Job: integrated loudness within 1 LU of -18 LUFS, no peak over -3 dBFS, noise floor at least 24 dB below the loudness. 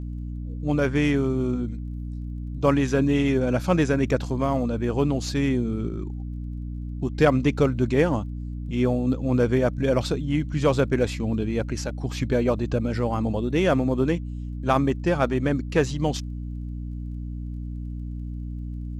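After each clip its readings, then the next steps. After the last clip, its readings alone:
ticks 22/s; hum 60 Hz; harmonics up to 300 Hz; hum level -29 dBFS; loudness -25.0 LUFS; peak -5.0 dBFS; loudness target -18.0 LUFS
-> de-click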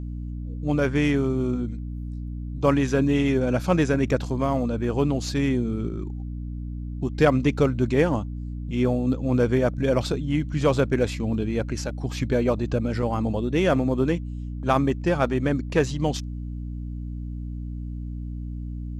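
ticks 0/s; hum 60 Hz; harmonics up to 300 Hz; hum level -29 dBFS
-> notches 60/120/180/240/300 Hz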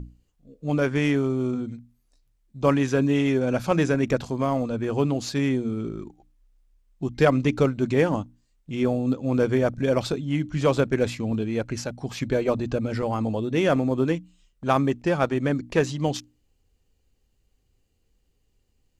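hum none; loudness -24.5 LUFS; peak -6.0 dBFS; loudness target -18.0 LUFS
-> gain +6.5 dB; limiter -3 dBFS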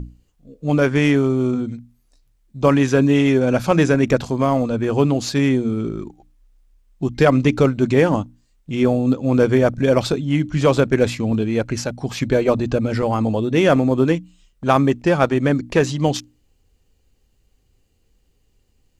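loudness -18.5 LUFS; peak -3.0 dBFS; noise floor -63 dBFS

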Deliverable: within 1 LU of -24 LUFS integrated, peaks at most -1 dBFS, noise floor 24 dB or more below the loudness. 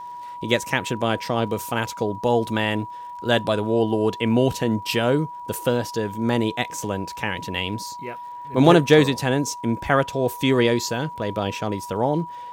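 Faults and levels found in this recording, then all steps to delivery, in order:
ticks 48/s; steady tone 970 Hz; tone level -33 dBFS; loudness -22.5 LUFS; peak -1.5 dBFS; loudness target -24.0 LUFS
-> de-click; notch 970 Hz, Q 30; gain -1.5 dB

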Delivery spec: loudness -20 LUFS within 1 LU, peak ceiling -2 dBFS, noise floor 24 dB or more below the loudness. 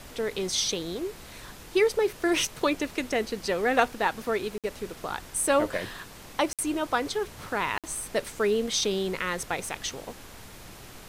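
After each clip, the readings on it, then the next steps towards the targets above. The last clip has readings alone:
dropouts 3; longest dropout 57 ms; noise floor -46 dBFS; noise floor target -52 dBFS; loudness -28.0 LUFS; peak -8.0 dBFS; loudness target -20.0 LUFS
-> interpolate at 4.58/6.53/7.78, 57 ms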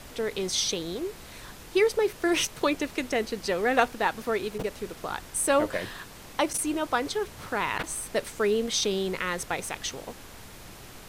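dropouts 0; noise floor -46 dBFS; noise floor target -52 dBFS
-> noise print and reduce 6 dB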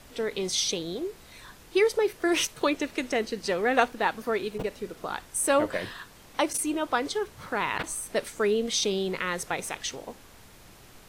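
noise floor -52 dBFS; loudness -28.0 LUFS; peak -8.0 dBFS; loudness target -20.0 LUFS
-> gain +8 dB; limiter -2 dBFS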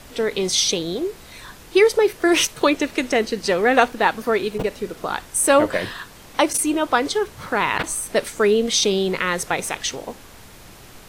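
loudness -20.0 LUFS; peak -2.0 dBFS; noise floor -44 dBFS

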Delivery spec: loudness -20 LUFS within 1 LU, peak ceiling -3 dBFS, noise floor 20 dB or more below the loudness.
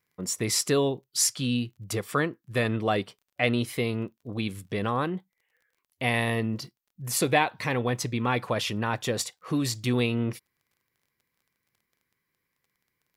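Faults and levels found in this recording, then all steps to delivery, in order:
ticks 26/s; loudness -27.5 LUFS; peak -7.5 dBFS; loudness target -20.0 LUFS
-> de-click; gain +7.5 dB; limiter -3 dBFS

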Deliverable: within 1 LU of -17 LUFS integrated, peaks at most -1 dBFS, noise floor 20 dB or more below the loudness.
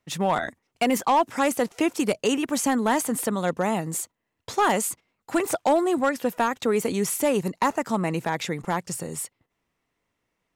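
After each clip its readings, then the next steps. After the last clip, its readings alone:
clipped 0.6%; flat tops at -14.0 dBFS; loudness -25.0 LUFS; peak -14.0 dBFS; loudness target -17.0 LUFS
-> clip repair -14 dBFS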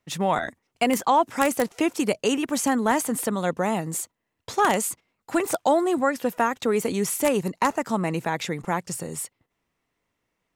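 clipped 0.0%; loudness -24.5 LUFS; peak -5.0 dBFS; loudness target -17.0 LUFS
-> gain +7.5 dB; limiter -1 dBFS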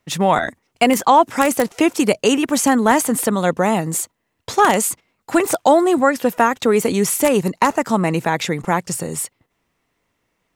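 loudness -17.5 LUFS; peak -1.0 dBFS; noise floor -71 dBFS

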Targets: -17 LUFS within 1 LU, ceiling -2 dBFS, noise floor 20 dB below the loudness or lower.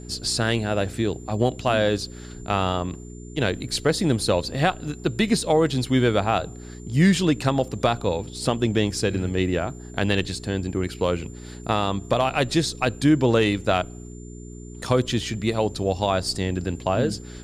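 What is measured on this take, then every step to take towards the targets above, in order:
hum 60 Hz; harmonics up to 420 Hz; hum level -37 dBFS; steady tone 7200 Hz; tone level -49 dBFS; loudness -23.5 LUFS; peak -7.5 dBFS; loudness target -17.0 LUFS
-> de-hum 60 Hz, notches 7; notch 7200 Hz, Q 30; gain +6.5 dB; limiter -2 dBFS

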